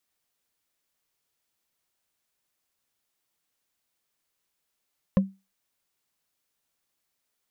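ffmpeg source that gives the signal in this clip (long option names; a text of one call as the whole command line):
ffmpeg -f lavfi -i "aevalsrc='0.224*pow(10,-3*t/0.25)*sin(2*PI*193*t)+0.1*pow(10,-3*t/0.074)*sin(2*PI*532.1*t)+0.0447*pow(10,-3*t/0.033)*sin(2*PI*1043*t)+0.02*pow(10,-3*t/0.018)*sin(2*PI*1724.1*t)+0.00891*pow(10,-3*t/0.011)*sin(2*PI*2574.6*t)':duration=0.45:sample_rate=44100" out.wav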